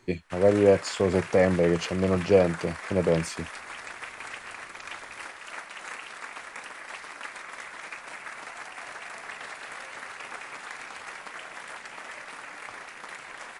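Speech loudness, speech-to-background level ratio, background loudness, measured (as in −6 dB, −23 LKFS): −24.0 LKFS, 15.0 dB, −39.0 LKFS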